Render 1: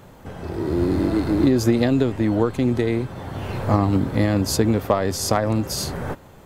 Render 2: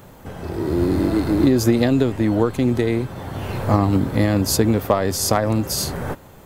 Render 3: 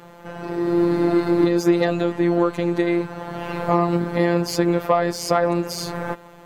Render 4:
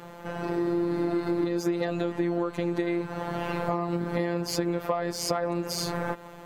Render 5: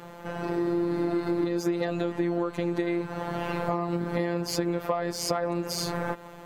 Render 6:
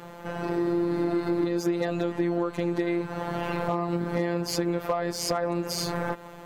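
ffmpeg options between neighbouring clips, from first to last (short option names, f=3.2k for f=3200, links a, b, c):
-af "highshelf=f=11k:g=9.5,volume=1.5dB"
-filter_complex "[0:a]afftfilt=real='hypot(re,im)*cos(PI*b)':imag='0':win_size=1024:overlap=0.75,asplit=2[a][b];[b]highpass=f=720:p=1,volume=15dB,asoftclip=type=tanh:threshold=-1dB[c];[a][c]amix=inputs=2:normalize=0,lowpass=f=1.4k:p=1,volume=-6dB,equalizer=f=920:t=o:w=2.5:g=-2,volume=1.5dB"
-af "acompressor=threshold=-24dB:ratio=6"
-af anull
-af "volume=17dB,asoftclip=hard,volume=-17dB,volume=1dB"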